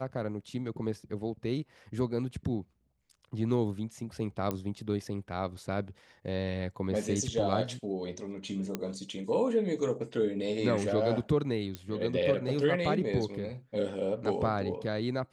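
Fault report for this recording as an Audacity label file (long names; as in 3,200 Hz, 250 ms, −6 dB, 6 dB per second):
4.510000	4.510000	click −18 dBFS
8.750000	8.750000	click −18 dBFS
11.750000	11.750000	click −22 dBFS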